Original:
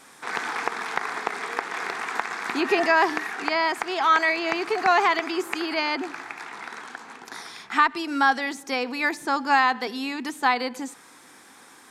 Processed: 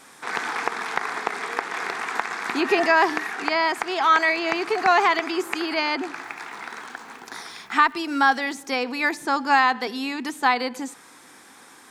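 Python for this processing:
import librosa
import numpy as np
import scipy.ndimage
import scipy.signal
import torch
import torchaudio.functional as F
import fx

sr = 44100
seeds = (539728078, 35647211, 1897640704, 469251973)

y = fx.dmg_crackle(x, sr, seeds[0], per_s=550.0, level_db=-48.0, at=(6.15, 8.65), fade=0.02)
y = y * librosa.db_to_amplitude(1.5)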